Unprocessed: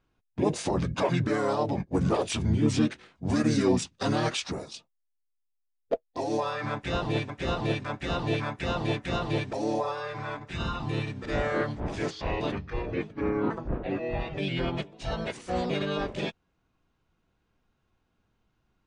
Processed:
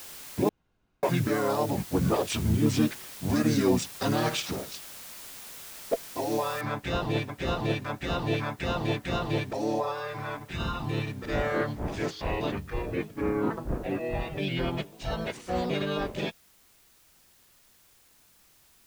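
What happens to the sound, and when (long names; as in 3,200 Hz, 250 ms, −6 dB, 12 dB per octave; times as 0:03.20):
0:00.49–0:01.03: fill with room tone
0:04.14–0:04.64: flutter between parallel walls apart 9.6 metres, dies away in 0.32 s
0:06.61: noise floor change −44 dB −61 dB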